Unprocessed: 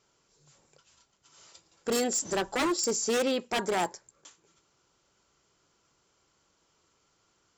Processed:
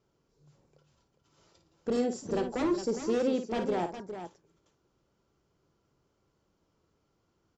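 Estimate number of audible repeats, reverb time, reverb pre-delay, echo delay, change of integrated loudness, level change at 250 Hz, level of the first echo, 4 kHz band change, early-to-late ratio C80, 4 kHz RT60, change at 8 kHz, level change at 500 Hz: 2, no reverb, no reverb, 54 ms, -2.5 dB, +2.0 dB, -9.0 dB, -11.5 dB, no reverb, no reverb, -16.5 dB, -0.5 dB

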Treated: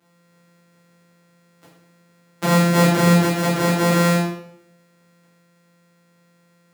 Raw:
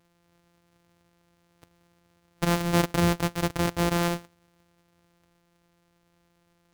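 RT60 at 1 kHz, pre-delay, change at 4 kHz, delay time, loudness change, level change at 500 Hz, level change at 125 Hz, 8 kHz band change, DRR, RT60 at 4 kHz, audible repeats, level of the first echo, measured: 0.70 s, 8 ms, +6.5 dB, no echo, +8.5 dB, +9.0 dB, +9.5 dB, +8.0 dB, -8.5 dB, 0.55 s, no echo, no echo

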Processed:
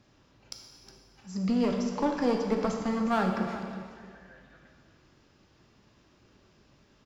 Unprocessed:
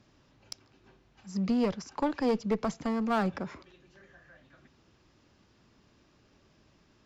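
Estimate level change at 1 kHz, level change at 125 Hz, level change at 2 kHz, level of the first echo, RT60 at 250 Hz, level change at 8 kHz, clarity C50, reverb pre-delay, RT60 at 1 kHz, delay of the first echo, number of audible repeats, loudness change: +2.5 dB, +2.0 dB, +2.5 dB, -14.5 dB, 1.9 s, no reading, 3.5 dB, 4 ms, 1.9 s, 363 ms, 1, +1.5 dB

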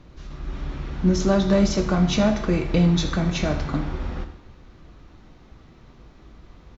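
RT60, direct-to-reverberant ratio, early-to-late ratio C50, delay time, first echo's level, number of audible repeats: 0.95 s, 7.0 dB, 9.5 dB, 80 ms, -15.5 dB, 1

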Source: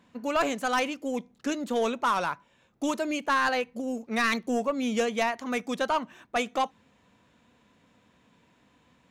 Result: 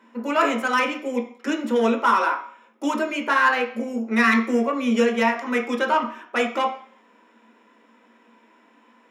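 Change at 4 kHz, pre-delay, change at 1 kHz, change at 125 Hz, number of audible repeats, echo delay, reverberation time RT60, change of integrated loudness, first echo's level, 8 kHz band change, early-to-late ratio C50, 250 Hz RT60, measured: +3.0 dB, 3 ms, +6.5 dB, no reading, no echo, no echo, 0.50 s, +6.5 dB, no echo, -1.0 dB, 9.0 dB, 0.35 s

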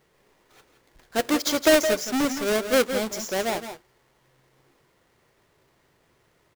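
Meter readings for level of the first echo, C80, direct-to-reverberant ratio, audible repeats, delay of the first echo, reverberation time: -10.5 dB, no reverb, no reverb, 1, 167 ms, no reverb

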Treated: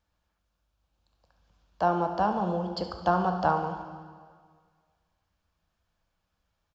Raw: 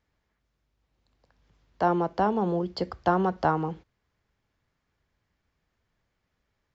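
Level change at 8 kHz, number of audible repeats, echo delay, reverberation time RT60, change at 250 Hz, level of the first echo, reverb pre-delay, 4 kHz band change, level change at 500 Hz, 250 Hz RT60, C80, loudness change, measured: no reading, 1, 72 ms, 1.8 s, -3.0 dB, -14.0 dB, 7 ms, +0.5 dB, -2.0 dB, 1.7 s, 9.0 dB, -1.0 dB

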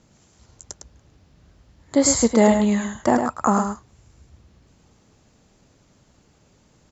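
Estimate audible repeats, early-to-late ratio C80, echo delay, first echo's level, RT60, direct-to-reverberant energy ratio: 1, no reverb, 106 ms, -6.5 dB, no reverb, no reverb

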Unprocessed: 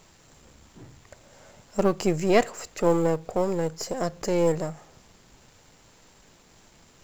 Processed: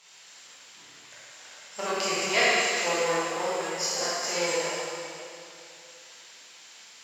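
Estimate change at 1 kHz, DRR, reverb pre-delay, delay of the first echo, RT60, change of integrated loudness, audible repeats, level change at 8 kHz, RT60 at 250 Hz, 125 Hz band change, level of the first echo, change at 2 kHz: +1.0 dB, -9.5 dB, 7 ms, no echo, 2.7 s, -1.0 dB, no echo, +8.5 dB, 2.6 s, -15.5 dB, no echo, +9.5 dB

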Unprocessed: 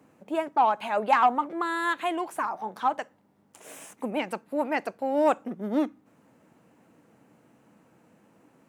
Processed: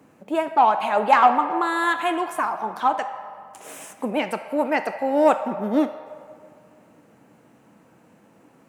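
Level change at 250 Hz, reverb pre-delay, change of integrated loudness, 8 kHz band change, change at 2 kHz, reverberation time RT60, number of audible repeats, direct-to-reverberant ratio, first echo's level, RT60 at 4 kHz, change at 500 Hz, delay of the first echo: +5.0 dB, 5 ms, +5.5 dB, +5.5 dB, +5.5 dB, 2.2 s, no echo, 8.0 dB, no echo, 1.2 s, +5.5 dB, no echo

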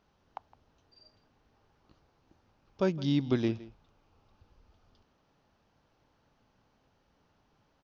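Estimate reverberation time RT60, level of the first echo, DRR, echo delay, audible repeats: no reverb, -19.0 dB, no reverb, 163 ms, 1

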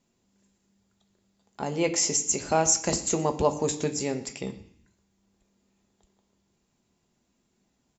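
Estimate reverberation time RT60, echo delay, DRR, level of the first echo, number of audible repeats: 0.65 s, 120 ms, 5.0 dB, -22.0 dB, 1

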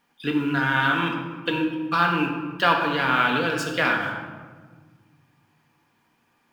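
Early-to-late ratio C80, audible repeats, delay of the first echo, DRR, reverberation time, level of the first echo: 6.0 dB, no echo, no echo, 1.0 dB, 1.5 s, no echo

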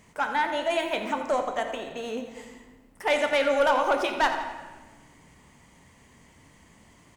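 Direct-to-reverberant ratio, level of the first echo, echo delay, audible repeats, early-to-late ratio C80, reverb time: 4.0 dB, -12.0 dB, 85 ms, 3, 7.0 dB, 1.3 s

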